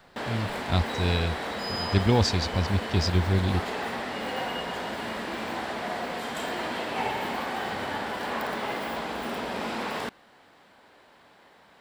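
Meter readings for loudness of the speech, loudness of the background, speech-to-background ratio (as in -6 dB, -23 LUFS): -27.0 LUFS, -32.0 LUFS, 5.0 dB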